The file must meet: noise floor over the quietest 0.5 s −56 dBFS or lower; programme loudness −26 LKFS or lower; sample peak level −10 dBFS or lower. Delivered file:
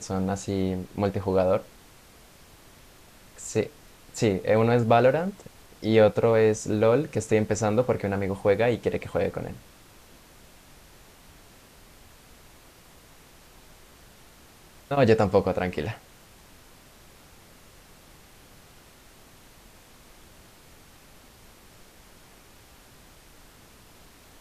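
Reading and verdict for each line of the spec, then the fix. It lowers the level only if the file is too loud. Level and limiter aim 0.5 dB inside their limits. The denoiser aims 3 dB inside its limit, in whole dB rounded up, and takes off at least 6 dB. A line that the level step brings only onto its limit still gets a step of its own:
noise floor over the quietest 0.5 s −52 dBFS: out of spec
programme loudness −24.5 LKFS: out of spec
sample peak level −6.0 dBFS: out of spec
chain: broadband denoise 6 dB, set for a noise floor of −52 dBFS
level −2 dB
brickwall limiter −10.5 dBFS

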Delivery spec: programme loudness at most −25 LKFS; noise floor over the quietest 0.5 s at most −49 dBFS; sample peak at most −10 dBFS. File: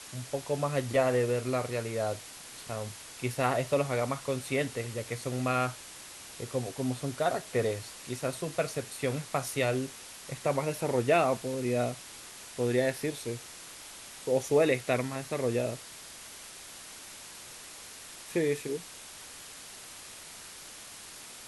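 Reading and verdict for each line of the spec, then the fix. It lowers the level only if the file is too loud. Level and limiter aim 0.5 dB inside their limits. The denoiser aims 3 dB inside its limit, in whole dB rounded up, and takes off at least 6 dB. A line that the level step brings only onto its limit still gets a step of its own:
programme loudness −31.5 LKFS: in spec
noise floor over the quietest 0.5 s −47 dBFS: out of spec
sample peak −13.0 dBFS: in spec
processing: broadband denoise 6 dB, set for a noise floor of −47 dBFS

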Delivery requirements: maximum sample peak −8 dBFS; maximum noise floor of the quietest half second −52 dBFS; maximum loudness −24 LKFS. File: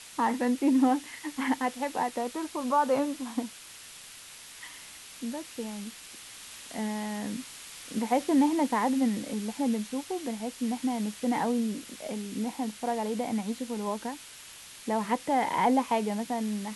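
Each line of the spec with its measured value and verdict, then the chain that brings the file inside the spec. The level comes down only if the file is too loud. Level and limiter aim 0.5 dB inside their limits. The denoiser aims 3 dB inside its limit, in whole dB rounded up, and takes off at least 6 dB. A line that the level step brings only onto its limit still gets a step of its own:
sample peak −14.0 dBFS: in spec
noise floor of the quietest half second −48 dBFS: out of spec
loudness −30.0 LKFS: in spec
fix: broadband denoise 7 dB, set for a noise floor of −48 dBFS

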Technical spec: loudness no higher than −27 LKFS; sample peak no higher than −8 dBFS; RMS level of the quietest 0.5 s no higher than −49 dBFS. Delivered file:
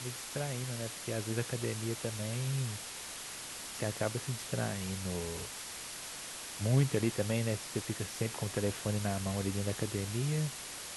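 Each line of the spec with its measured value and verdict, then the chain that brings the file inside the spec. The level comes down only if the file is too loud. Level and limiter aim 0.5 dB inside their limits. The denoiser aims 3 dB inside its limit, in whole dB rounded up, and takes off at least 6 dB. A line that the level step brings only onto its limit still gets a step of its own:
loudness −35.5 LKFS: in spec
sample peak −16.5 dBFS: in spec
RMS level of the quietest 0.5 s −44 dBFS: out of spec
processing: broadband denoise 8 dB, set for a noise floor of −44 dBFS

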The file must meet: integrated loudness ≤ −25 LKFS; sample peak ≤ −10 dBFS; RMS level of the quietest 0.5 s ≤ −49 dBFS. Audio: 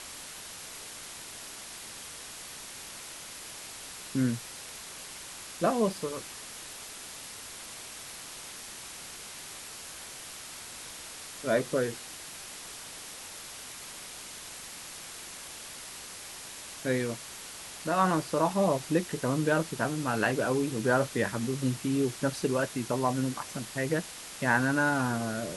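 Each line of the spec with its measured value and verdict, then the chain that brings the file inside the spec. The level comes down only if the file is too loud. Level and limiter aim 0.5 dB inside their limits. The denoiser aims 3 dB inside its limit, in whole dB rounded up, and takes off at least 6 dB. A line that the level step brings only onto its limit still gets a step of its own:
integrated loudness −33.0 LKFS: in spec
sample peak −11.5 dBFS: in spec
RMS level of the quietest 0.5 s −44 dBFS: out of spec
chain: broadband denoise 8 dB, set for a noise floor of −44 dBFS

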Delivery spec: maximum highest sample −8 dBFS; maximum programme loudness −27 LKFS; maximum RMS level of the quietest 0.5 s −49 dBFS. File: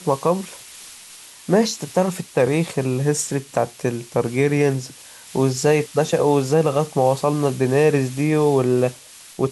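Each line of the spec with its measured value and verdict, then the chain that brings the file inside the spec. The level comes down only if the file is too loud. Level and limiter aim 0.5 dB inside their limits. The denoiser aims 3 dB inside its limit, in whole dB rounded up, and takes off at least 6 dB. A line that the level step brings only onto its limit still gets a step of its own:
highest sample −5.5 dBFS: out of spec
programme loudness −20.0 LKFS: out of spec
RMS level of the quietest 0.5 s −42 dBFS: out of spec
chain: level −7.5 dB

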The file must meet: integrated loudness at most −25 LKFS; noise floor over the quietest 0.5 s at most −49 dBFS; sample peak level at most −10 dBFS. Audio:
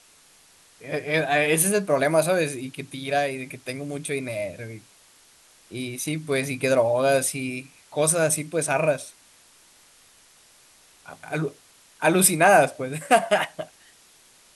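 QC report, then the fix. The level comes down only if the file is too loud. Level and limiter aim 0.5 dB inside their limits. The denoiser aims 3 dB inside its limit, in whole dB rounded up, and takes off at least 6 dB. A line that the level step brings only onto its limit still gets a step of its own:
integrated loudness −23.0 LKFS: out of spec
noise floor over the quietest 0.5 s −55 dBFS: in spec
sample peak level −4.5 dBFS: out of spec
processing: level −2.5 dB
brickwall limiter −10.5 dBFS

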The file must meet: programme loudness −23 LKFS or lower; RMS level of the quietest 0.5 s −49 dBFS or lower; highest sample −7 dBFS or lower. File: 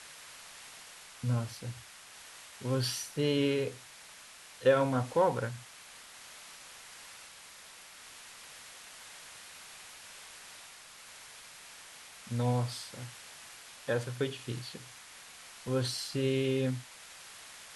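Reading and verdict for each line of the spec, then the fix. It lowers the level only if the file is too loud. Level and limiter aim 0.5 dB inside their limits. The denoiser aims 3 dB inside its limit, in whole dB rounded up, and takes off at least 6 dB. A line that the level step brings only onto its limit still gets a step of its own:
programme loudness −32.5 LKFS: in spec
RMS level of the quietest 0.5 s −52 dBFS: in spec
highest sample −14.0 dBFS: in spec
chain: no processing needed

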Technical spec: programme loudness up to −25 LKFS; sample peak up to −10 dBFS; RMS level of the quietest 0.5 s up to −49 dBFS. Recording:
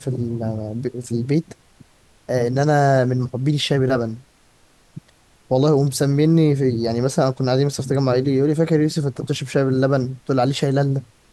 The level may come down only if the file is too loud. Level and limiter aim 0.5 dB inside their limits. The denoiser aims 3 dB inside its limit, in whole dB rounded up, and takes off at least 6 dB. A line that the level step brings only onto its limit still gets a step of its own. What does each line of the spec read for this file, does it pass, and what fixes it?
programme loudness −19.5 LKFS: out of spec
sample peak −6.0 dBFS: out of spec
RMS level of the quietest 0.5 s −55 dBFS: in spec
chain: level −6 dB

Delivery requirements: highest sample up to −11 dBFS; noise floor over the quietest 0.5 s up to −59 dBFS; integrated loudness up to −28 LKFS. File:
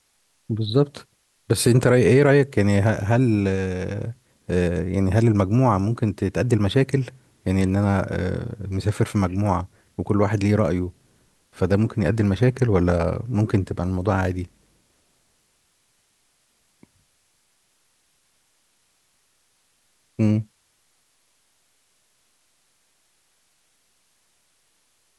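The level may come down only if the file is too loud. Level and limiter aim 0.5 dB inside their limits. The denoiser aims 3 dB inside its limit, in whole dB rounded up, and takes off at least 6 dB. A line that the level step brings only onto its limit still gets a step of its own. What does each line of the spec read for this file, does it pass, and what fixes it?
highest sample −5.5 dBFS: out of spec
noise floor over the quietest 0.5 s −66 dBFS: in spec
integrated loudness −21.5 LKFS: out of spec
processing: level −7 dB

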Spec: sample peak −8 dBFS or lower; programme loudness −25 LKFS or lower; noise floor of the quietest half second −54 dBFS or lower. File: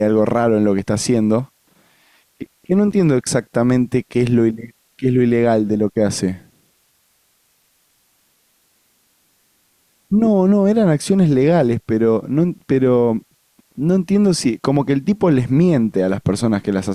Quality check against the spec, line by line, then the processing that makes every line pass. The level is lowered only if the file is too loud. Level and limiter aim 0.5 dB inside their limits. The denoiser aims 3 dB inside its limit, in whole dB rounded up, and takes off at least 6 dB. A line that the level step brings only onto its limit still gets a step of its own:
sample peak −5.5 dBFS: out of spec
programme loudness −16.5 LKFS: out of spec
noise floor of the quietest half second −61 dBFS: in spec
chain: level −9 dB

